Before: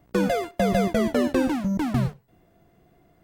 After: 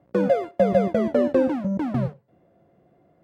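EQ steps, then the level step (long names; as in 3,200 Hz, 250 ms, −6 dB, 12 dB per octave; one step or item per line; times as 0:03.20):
high-pass filter 110 Hz 12 dB per octave
low-pass filter 1,200 Hz 6 dB per octave
parametric band 550 Hz +12 dB 0.2 octaves
0.0 dB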